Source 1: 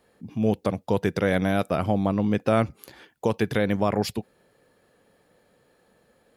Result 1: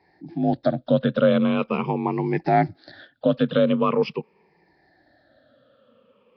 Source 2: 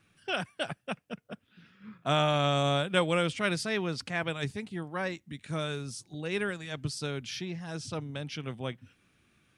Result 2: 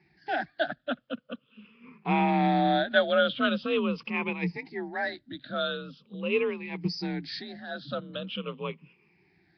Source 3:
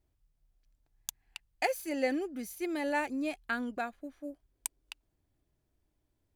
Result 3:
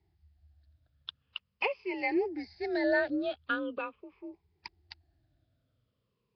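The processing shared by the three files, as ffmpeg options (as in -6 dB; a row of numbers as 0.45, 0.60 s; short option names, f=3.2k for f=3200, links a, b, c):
-af "afftfilt=real='re*pow(10,20/40*sin(2*PI*(0.75*log(max(b,1)*sr/1024/100)/log(2)-(-0.43)*(pts-256)/sr)))':imag='im*pow(10,20/40*sin(2*PI*(0.75*log(max(b,1)*sr/1024/100)/log(2)-(-0.43)*(pts-256)/sr)))':win_size=1024:overlap=0.75,afreqshift=40,volume=-1.5dB" -ar 11025 -c:a nellymoser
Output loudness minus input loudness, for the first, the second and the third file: +3.0, +2.5, +3.0 LU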